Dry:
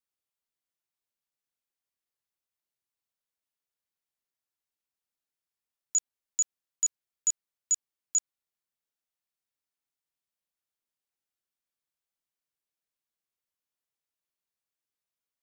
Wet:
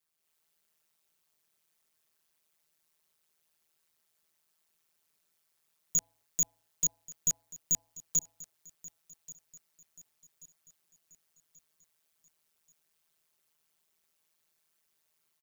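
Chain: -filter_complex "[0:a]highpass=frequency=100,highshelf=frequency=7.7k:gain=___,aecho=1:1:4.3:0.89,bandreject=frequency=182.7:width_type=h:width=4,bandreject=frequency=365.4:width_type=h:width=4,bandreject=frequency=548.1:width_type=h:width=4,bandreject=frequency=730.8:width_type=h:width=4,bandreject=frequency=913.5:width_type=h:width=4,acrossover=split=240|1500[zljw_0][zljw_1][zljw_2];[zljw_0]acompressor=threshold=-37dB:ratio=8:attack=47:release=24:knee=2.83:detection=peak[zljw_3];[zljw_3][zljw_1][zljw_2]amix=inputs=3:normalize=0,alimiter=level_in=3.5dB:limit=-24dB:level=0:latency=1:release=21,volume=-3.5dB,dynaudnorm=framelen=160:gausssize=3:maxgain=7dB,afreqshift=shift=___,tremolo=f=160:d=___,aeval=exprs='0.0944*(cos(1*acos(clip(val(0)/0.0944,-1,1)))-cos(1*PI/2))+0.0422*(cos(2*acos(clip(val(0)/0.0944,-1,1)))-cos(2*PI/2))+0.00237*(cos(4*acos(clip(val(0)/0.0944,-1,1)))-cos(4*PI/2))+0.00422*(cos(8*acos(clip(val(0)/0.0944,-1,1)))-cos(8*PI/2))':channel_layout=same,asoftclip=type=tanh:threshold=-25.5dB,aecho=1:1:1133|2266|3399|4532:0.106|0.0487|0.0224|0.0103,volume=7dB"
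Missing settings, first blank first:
3.5, -72, 0.889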